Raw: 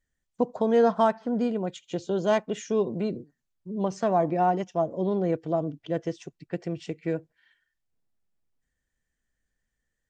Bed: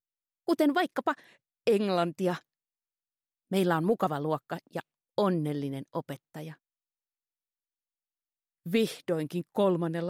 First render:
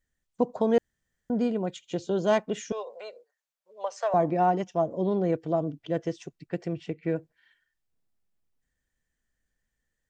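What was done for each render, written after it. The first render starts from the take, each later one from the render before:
0:00.78–0:01.30: fill with room tone
0:02.72–0:04.14: elliptic high-pass filter 500 Hz
0:06.73–0:07.16: bass and treble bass +1 dB, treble −11 dB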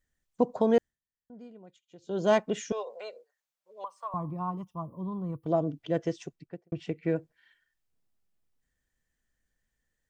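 0:00.74–0:02.27: duck −21.5 dB, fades 0.26 s
0:03.84–0:05.46: drawn EQ curve 140 Hz 0 dB, 410 Hz −18 dB, 730 Hz −19 dB, 1,100 Hz +4 dB, 1,600 Hz −26 dB, 3,300 Hz −17 dB, 7,000 Hz −22 dB, 10,000 Hz +9 dB
0:06.25–0:06.72: fade out and dull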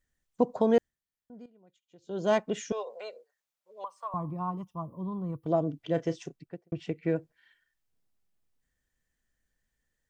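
0:01.46–0:03.08: fade in equal-power, from −14 dB
0:05.81–0:06.39: double-tracking delay 31 ms −12 dB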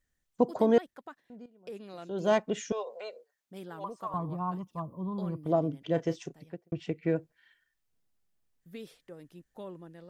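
mix in bed −18 dB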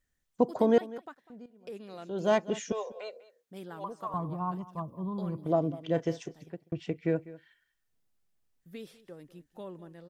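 single-tap delay 198 ms −18.5 dB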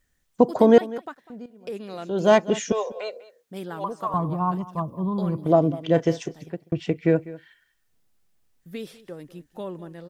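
level +9 dB
brickwall limiter −3 dBFS, peak gain reduction 1.5 dB

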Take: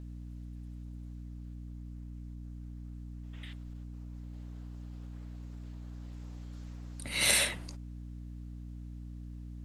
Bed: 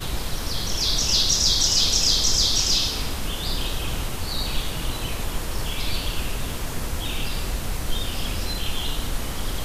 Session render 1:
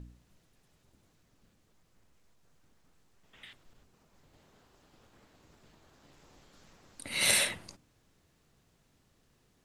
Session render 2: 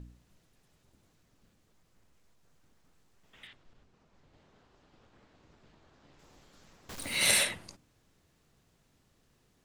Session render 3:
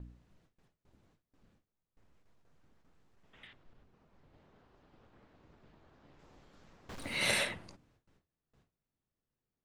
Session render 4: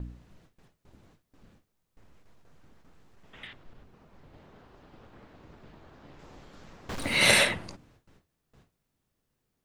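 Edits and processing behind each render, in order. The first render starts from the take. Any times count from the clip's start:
hum removal 60 Hz, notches 5
0:03.47–0:06.19: high-frequency loss of the air 91 metres; 0:06.89–0:07.43: converter with a step at zero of −38.5 dBFS
low-pass filter 2,100 Hz 6 dB per octave; noise gate with hold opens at −59 dBFS
level +10.5 dB

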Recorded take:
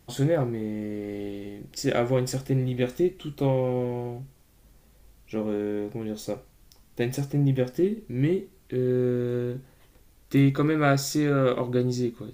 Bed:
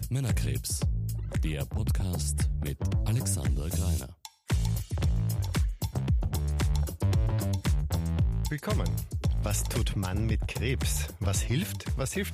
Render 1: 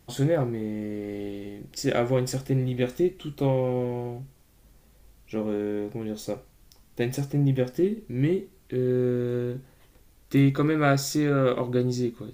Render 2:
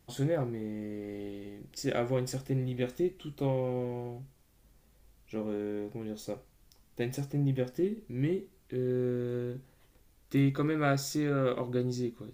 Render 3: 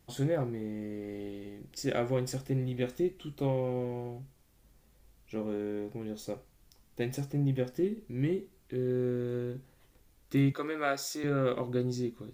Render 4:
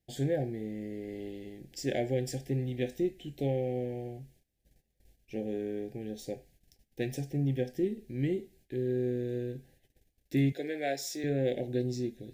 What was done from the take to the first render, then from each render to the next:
0:11.16–0:11.56: linearly interpolated sample-rate reduction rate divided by 2×
level −6.5 dB
0:10.52–0:11.24: high-pass filter 440 Hz
noise gate −60 dBFS, range −16 dB; Chebyshev band-stop filter 800–1,600 Hz, order 4

